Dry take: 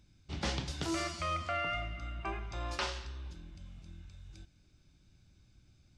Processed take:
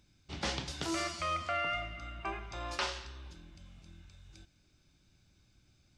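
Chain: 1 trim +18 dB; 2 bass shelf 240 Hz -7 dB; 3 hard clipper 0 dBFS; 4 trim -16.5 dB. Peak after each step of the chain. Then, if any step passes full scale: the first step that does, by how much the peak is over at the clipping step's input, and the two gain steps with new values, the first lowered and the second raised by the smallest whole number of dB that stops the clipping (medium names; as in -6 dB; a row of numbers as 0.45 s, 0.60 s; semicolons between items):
-3.5 dBFS, -3.0 dBFS, -3.0 dBFS, -19.5 dBFS; nothing clips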